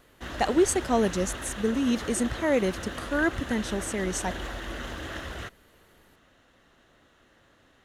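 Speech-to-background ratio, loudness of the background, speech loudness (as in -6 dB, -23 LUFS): 9.5 dB, -37.0 LUFS, -27.5 LUFS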